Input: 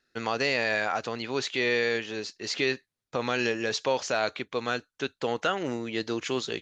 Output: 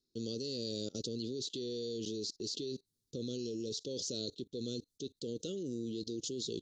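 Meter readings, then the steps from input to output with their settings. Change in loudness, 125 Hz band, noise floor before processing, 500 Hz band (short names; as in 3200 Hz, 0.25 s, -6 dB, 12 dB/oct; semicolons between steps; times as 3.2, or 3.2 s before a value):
-11.0 dB, -4.5 dB, under -85 dBFS, -11.5 dB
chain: inverse Chebyshev band-stop 700–2400 Hz, stop band 40 dB; level quantiser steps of 23 dB; gain +7 dB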